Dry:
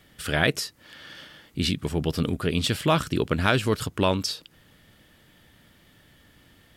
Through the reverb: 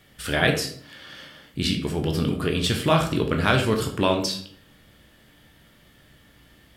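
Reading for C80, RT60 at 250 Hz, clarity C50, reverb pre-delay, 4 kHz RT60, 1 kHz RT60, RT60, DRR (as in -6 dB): 12.0 dB, 0.70 s, 8.5 dB, 12 ms, 0.40 s, 0.50 s, 0.55 s, 2.5 dB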